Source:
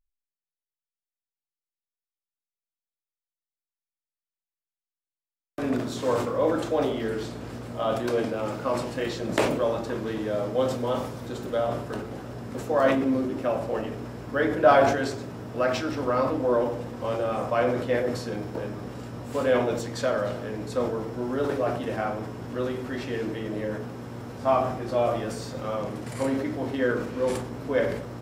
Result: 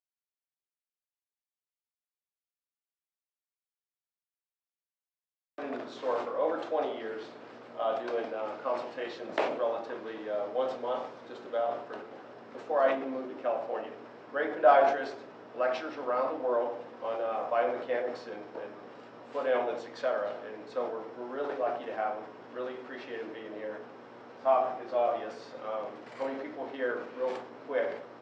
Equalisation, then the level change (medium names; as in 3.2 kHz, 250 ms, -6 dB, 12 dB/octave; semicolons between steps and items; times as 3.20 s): dynamic bell 730 Hz, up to +5 dB, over -39 dBFS, Q 3.2; band-pass 440–7600 Hz; distance through air 170 m; -4.5 dB